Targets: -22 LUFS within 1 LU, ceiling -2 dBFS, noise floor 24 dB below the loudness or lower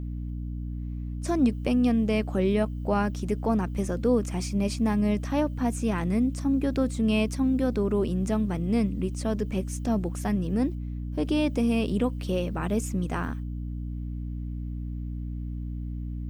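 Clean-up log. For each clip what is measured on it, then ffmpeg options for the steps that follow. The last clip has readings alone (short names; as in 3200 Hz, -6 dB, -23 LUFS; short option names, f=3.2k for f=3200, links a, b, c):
hum 60 Hz; harmonics up to 300 Hz; hum level -31 dBFS; loudness -27.5 LUFS; peak -12.0 dBFS; loudness target -22.0 LUFS
-> -af "bandreject=f=60:t=h:w=6,bandreject=f=120:t=h:w=6,bandreject=f=180:t=h:w=6,bandreject=f=240:t=h:w=6,bandreject=f=300:t=h:w=6"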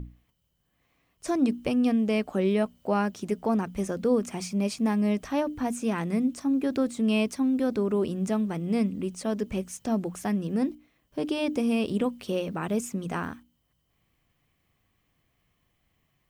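hum none; loudness -28.0 LUFS; peak -13.5 dBFS; loudness target -22.0 LUFS
-> -af "volume=6dB"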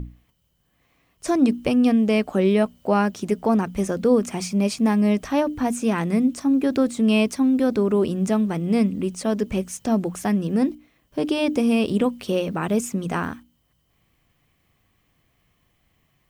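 loudness -22.0 LUFS; peak -7.5 dBFS; noise floor -67 dBFS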